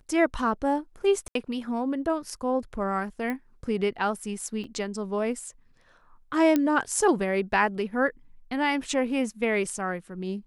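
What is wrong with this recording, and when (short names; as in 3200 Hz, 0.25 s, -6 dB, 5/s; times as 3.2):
1.28–1.35 gap 73 ms
3.3 pop -19 dBFS
4.64 gap 3.6 ms
6.56 pop -11 dBFS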